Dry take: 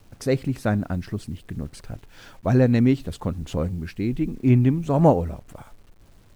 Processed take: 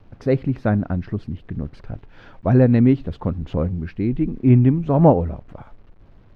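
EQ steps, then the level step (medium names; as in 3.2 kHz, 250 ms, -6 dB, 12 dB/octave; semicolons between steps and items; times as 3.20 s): distance through air 270 m; peaking EQ 4.1 kHz -3.5 dB 2.6 oct; +4.0 dB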